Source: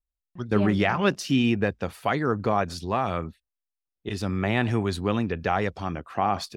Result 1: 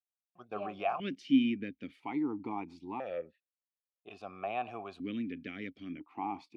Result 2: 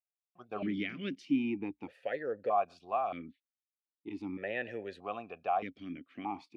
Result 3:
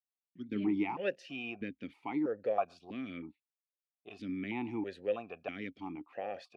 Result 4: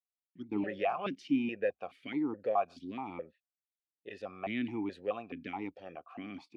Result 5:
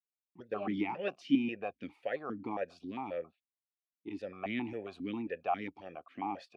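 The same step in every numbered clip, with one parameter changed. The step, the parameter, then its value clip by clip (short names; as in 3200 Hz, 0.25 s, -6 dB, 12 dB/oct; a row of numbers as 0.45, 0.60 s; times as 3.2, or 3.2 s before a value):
vowel sequencer, rate: 1, 1.6, 3.1, 4.7, 7.4 Hz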